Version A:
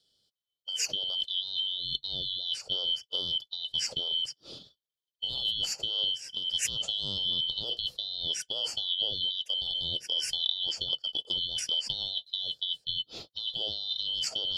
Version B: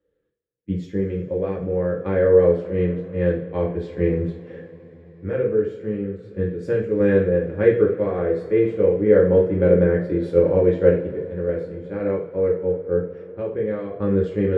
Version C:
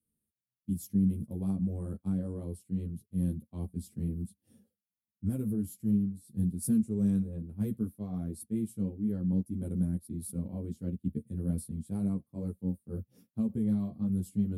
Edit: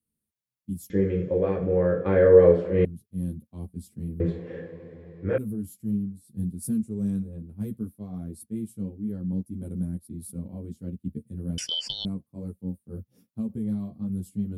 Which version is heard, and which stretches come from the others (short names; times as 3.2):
C
0.9–2.85 from B
4.2–5.38 from B
11.58–12.05 from A